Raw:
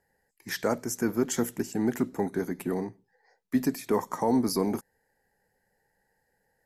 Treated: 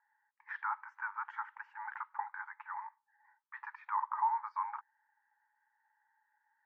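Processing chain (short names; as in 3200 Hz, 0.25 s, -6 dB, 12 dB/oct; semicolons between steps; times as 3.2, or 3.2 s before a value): brick-wall FIR high-pass 820 Hz; limiter -27 dBFS, peak gain reduction 8.5 dB; LPF 1500 Hz 24 dB/oct; gain +4.5 dB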